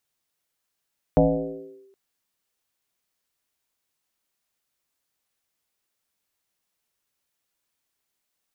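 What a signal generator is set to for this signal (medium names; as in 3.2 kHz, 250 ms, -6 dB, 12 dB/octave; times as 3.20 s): FM tone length 0.77 s, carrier 390 Hz, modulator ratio 0.29, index 2.7, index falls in 0.73 s linear, decay 1.05 s, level -11.5 dB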